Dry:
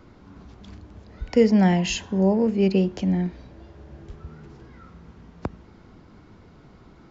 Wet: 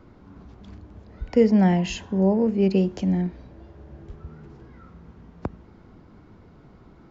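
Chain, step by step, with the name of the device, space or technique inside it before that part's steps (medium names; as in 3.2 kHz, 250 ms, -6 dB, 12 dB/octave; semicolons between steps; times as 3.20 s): 2.70–3.22 s: treble shelf 5.8 kHz +11.5 dB; behind a face mask (treble shelf 2.1 kHz -7.5 dB)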